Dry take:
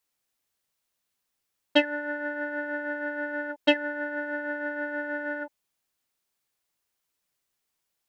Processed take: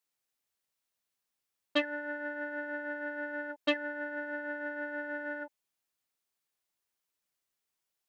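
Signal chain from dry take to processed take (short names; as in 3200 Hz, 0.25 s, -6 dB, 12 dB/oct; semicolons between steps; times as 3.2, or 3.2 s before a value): low shelf 160 Hz -4 dB; core saturation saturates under 1000 Hz; gain -5.5 dB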